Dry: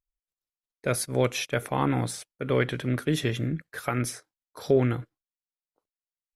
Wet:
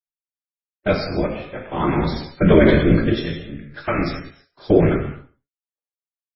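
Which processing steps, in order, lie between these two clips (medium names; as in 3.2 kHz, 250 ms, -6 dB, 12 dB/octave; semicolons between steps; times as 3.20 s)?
4.12–4.67 s: de-hum 145 Hz, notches 4; expander -34 dBFS; 1.06–1.70 s: low-pass 2.2 kHz 12 dB/octave; 2.29–3.04 s: bass shelf 490 Hz +8.5 dB; whisper effect; flange 1.3 Hz, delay 7.3 ms, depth 8 ms, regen +37%; tremolo triangle 0.51 Hz, depth 90%; delay 133 ms -21 dB; gated-style reverb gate 300 ms falling, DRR 1.5 dB; loudness maximiser +15 dB; trim -1 dB; MP3 16 kbps 16 kHz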